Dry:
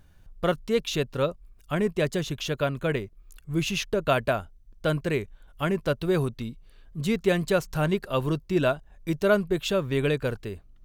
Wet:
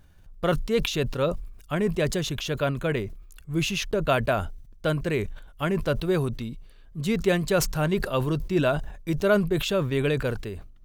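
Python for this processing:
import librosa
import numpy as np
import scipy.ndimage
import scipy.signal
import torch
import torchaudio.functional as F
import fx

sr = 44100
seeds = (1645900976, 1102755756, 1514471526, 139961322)

y = fx.sustainer(x, sr, db_per_s=73.0)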